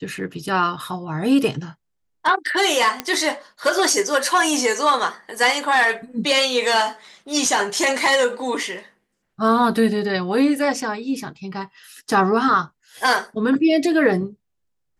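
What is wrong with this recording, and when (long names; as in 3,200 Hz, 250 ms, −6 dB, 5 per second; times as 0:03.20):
0:03.00: click −7 dBFS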